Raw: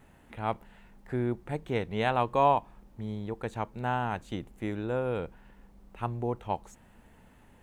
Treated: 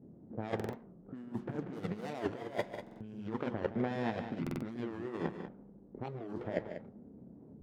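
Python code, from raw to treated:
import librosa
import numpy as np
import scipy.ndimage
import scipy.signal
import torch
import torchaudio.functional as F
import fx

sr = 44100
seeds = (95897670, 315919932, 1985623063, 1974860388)

p1 = scipy.ndimage.median_filter(x, 41, mode='constant')
p2 = fx.formant_shift(p1, sr, semitones=-4)
p3 = fx.fold_sine(p2, sr, drive_db=4, ceiling_db=-16.0)
p4 = p2 + (p3 * librosa.db_to_amplitude(-6.5))
p5 = fx.chorus_voices(p4, sr, voices=2, hz=0.32, base_ms=29, depth_ms=1.4, mix_pct=35)
p6 = fx.env_lowpass(p5, sr, base_hz=310.0, full_db=-23.5)
p7 = fx.over_compress(p6, sr, threshold_db=-35.0, ratio=-0.5)
p8 = scipy.signal.sosfilt(scipy.signal.butter(2, 220.0, 'highpass', fs=sr, output='sos'), p7)
p9 = fx.echo_multitap(p8, sr, ms=(146, 192), db=(-11.5, -10.5))
p10 = fx.buffer_glitch(p9, sr, at_s=(0.55, 2.82, 4.42), block=2048, repeats=3)
p11 = fx.record_warp(p10, sr, rpm=45.0, depth_cents=250.0)
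y = p11 * librosa.db_to_amplitude(2.5)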